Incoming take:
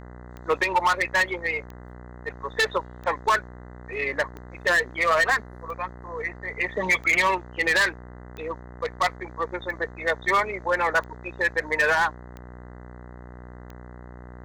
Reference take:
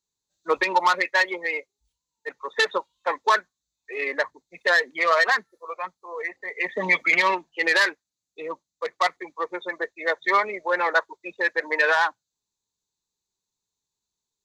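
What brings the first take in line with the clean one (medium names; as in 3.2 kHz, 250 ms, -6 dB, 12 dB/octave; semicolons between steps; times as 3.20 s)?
clip repair -15 dBFS; de-click; de-hum 61.1 Hz, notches 33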